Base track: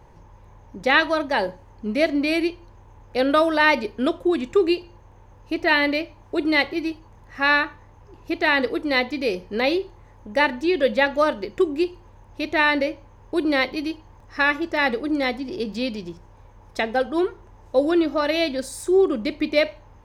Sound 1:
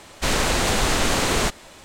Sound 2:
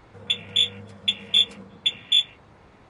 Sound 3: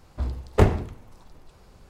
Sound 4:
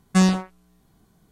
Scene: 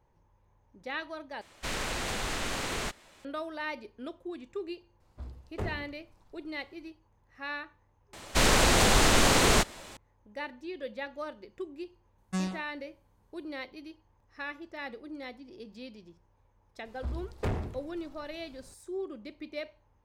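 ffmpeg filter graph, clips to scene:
-filter_complex "[1:a]asplit=2[s0][s1];[3:a]asplit=2[s2][s3];[0:a]volume=0.112[s4];[s0]equalizer=f=2100:w=0.73:g=3.5[s5];[s2]alimiter=limit=0.266:level=0:latency=1:release=13[s6];[s3]asoftclip=type=tanh:threshold=0.0891[s7];[s4]asplit=3[s8][s9][s10];[s8]atrim=end=1.414[s11];[s5]atrim=end=1.84,asetpts=PTS-STARTPTS,volume=0.2[s12];[s9]atrim=start=3.246:end=8.134[s13];[s1]atrim=end=1.84,asetpts=PTS-STARTPTS,volume=0.841[s14];[s10]atrim=start=9.966[s15];[s6]atrim=end=1.89,asetpts=PTS-STARTPTS,volume=0.188,afade=t=in:d=0.004:c=hsin,afade=t=out:st=1.886:d=0.004:c=hsin,adelay=5000[s16];[4:a]atrim=end=1.31,asetpts=PTS-STARTPTS,volume=0.178,afade=t=in:d=0.004:c=hsin,afade=t=out:st=1.306:d=0.004:c=hsin,adelay=12180[s17];[s7]atrim=end=1.89,asetpts=PTS-STARTPTS,volume=0.531,afade=t=in:d=0.004:c=hsin,afade=t=out:st=1.886:d=0.004:c=hsin,adelay=16850[s18];[s11][s12]acrossfade=d=0.004:c1=hsin:c2=hsin[s19];[s19][s13]acrossfade=d=0.004:c1=hsin:c2=hsin[s20];[s20][s14]acrossfade=d=0.004:c1=hsin:c2=hsin[s21];[s21][s15]acrossfade=d=0.004:c1=hsin:c2=hsin[s22];[s22][s16][s17][s18]amix=inputs=4:normalize=0"

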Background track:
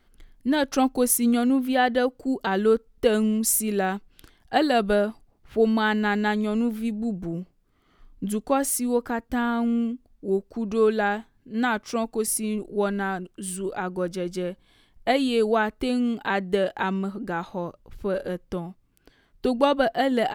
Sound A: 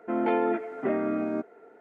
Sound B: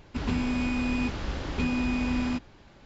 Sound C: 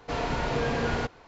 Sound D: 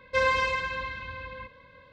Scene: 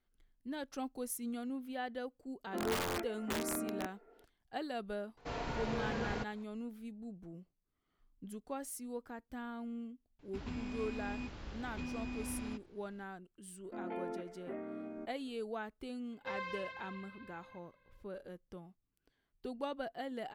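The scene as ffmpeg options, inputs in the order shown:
-filter_complex "[1:a]asplit=2[s0][s1];[0:a]volume=0.106[s2];[s0]aeval=exprs='(mod(9.44*val(0)+1,2)-1)/9.44':c=same[s3];[s1]equalizer=f=1300:w=1.5:g=-3[s4];[4:a]highpass=120,lowpass=5200[s5];[s3]atrim=end=1.8,asetpts=PTS-STARTPTS,volume=0.282,afade=t=in:d=0.004:c=hsin,afade=t=out:st=1.796:d=0.004:c=hsin,adelay=2450[s6];[3:a]atrim=end=1.27,asetpts=PTS-STARTPTS,volume=0.299,afade=t=in:d=0.004:c=hsin,afade=t=out:st=1.266:d=0.004:c=hsin,adelay=227997S[s7];[2:a]atrim=end=2.85,asetpts=PTS-STARTPTS,volume=0.188,afade=t=in:d=0.004:c=hsin,afade=t=out:st=2.846:d=0.004:c=hsin,adelay=10190[s8];[s4]atrim=end=1.8,asetpts=PTS-STARTPTS,volume=0.158,afade=t=in:d=0.004:c=hsin,afade=t=out:st=1.796:d=0.004:c=hsin,adelay=601524S[s9];[s5]atrim=end=1.92,asetpts=PTS-STARTPTS,volume=0.133,afade=t=in:d=0.004:c=hsin,afade=t=out:st=1.916:d=0.004:c=hsin,adelay=16120[s10];[s2][s6][s7][s8][s9][s10]amix=inputs=6:normalize=0"

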